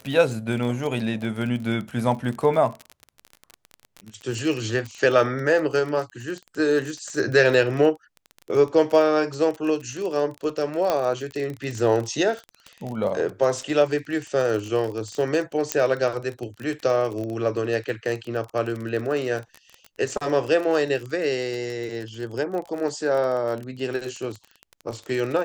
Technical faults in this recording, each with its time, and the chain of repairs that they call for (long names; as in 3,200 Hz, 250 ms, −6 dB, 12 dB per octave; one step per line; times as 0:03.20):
surface crackle 31 per second −28 dBFS
0:10.90: click −9 dBFS
0:15.72: click −5 dBFS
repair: click removal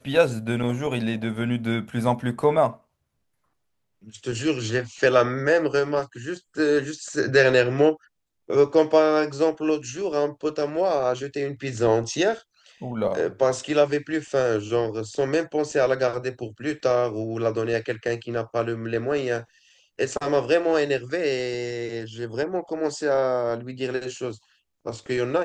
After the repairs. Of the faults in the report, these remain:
none of them is left